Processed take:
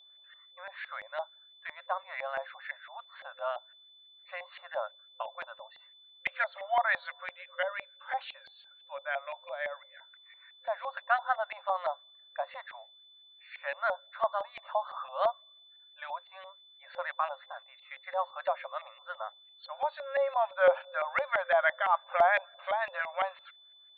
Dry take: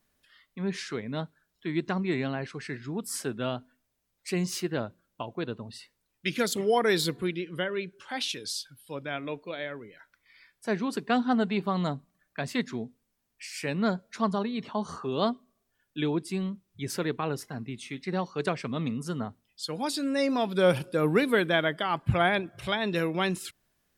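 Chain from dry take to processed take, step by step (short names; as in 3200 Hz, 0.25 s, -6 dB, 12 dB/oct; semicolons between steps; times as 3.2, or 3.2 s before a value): FFT band-pass 520–4500 Hz; LFO low-pass saw up 5.9 Hz 730–2100 Hz; whine 3500 Hz -53 dBFS; gain -2.5 dB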